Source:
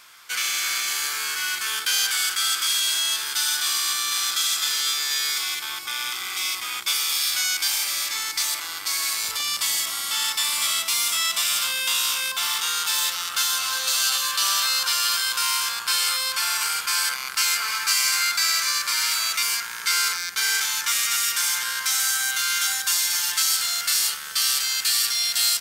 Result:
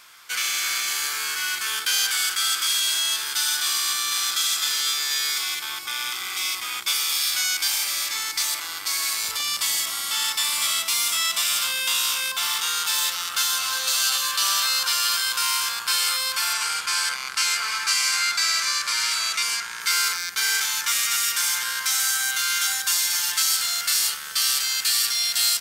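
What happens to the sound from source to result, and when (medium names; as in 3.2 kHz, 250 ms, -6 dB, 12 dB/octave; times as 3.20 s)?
16.53–19.81 s: low-pass 9.4 kHz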